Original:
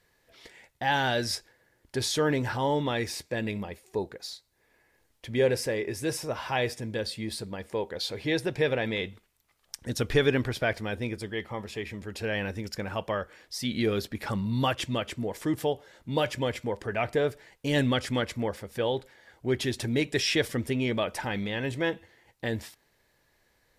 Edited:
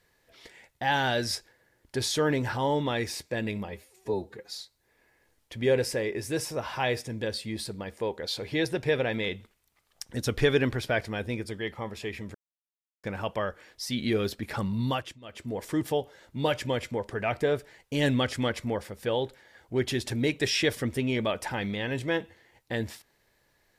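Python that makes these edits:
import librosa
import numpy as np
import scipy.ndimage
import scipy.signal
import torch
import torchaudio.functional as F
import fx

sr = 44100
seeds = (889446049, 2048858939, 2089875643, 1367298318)

y = fx.edit(x, sr, fx.stretch_span(start_s=3.69, length_s=0.55, factor=1.5),
    fx.silence(start_s=12.07, length_s=0.69),
    fx.fade_down_up(start_s=14.54, length_s=0.78, db=-23.5, fade_s=0.38), tone=tone)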